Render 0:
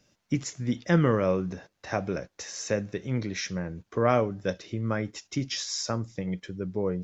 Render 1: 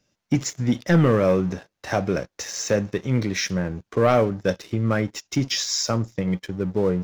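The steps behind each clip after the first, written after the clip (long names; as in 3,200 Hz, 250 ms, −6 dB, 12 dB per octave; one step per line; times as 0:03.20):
leveller curve on the samples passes 2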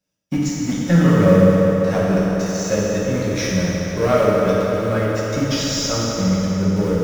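mu-law and A-law mismatch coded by A
in parallel at −10 dB: comparator with hysteresis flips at −19 dBFS
on the sum: convolution reverb RT60 4.9 s, pre-delay 3 ms, DRR −7.5 dB
level −4.5 dB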